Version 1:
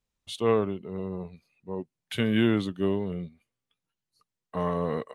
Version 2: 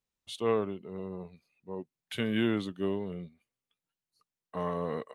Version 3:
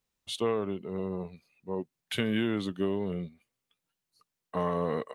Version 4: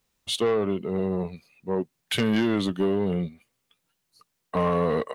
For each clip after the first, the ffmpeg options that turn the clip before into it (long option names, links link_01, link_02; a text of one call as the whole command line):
ffmpeg -i in.wav -af "lowshelf=frequency=110:gain=-8,volume=-4dB" out.wav
ffmpeg -i in.wav -af "acompressor=threshold=-30dB:ratio=6,volume=5.5dB" out.wav
ffmpeg -i in.wav -af "asoftclip=type=tanh:threshold=-25.5dB,volume=9dB" out.wav